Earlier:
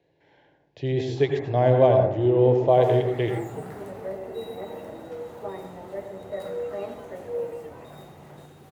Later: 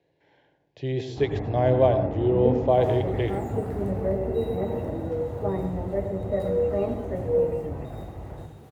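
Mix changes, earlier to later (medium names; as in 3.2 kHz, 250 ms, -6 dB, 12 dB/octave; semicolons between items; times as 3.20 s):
speech: send -6.5 dB; first sound: remove high-pass 1 kHz 6 dB/octave; second sound -3.0 dB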